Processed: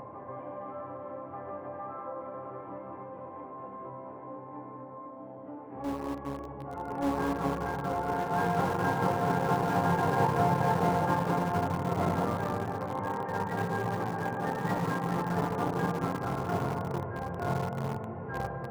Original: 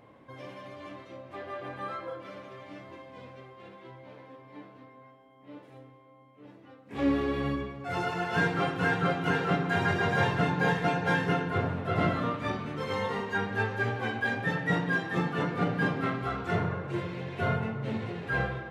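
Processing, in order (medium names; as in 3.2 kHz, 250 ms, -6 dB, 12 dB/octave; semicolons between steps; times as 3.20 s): local Wiener filter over 9 samples; low-pass 1.2 kHz 12 dB/octave; band-stop 910 Hz, Q 16; reverberation RT60 3.5 s, pre-delay 85 ms, DRR 2.5 dB; in parallel at -10.5 dB: bit crusher 4-bit; on the sum: peaking EQ 900 Hz +12 dB 0.56 oct; upward compressor, threshold -28 dBFS; on a send: reverse echo 1182 ms -4.5 dB; on the sum: trim -7 dB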